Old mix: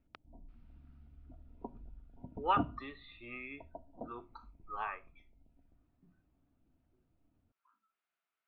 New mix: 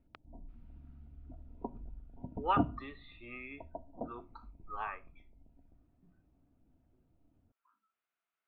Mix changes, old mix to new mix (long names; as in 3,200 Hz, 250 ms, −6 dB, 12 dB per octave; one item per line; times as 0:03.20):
background +4.5 dB
master: add high-frequency loss of the air 85 metres